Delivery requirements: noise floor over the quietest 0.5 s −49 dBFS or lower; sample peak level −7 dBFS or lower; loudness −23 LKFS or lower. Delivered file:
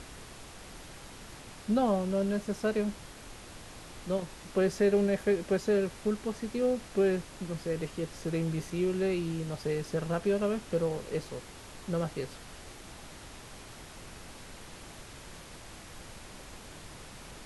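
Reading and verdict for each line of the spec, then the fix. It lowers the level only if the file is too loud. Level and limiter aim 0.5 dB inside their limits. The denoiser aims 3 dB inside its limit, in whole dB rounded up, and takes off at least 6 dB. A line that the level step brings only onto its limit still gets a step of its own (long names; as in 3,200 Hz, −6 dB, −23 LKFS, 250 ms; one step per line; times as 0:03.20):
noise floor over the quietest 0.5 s −48 dBFS: out of spec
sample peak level −16.5 dBFS: in spec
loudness −31.5 LKFS: in spec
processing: broadband denoise 6 dB, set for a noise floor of −48 dBFS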